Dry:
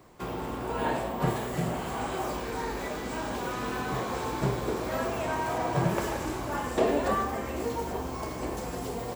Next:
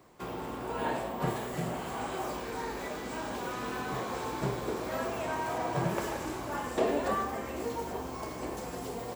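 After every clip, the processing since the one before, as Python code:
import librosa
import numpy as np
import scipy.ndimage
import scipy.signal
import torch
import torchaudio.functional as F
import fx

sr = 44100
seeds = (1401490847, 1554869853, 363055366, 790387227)

y = fx.low_shelf(x, sr, hz=100.0, db=-7.0)
y = y * librosa.db_to_amplitude(-3.0)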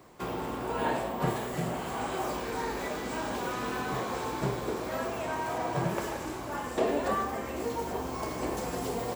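y = fx.rider(x, sr, range_db=4, speed_s=2.0)
y = y * librosa.db_to_amplitude(1.5)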